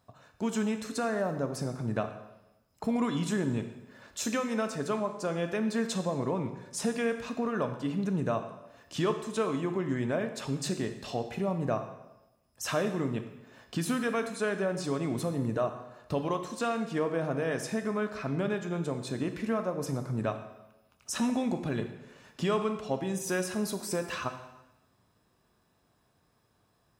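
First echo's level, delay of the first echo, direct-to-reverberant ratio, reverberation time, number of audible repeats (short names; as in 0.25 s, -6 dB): none, none, 7.0 dB, 0.95 s, none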